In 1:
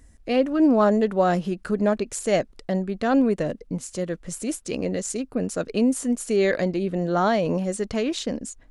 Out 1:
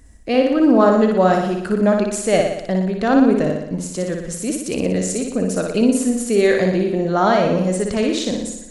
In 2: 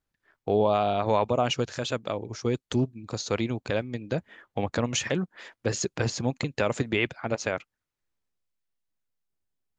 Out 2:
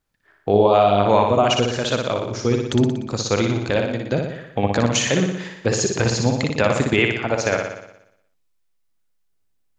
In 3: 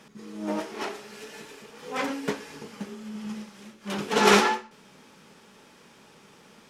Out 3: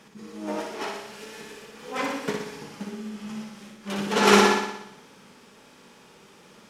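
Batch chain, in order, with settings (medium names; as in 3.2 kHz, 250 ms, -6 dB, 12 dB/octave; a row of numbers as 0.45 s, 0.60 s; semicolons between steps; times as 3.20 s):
flutter echo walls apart 10.2 m, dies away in 0.82 s; peak normalisation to -2 dBFS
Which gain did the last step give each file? +4.0 dB, +6.5 dB, -0.5 dB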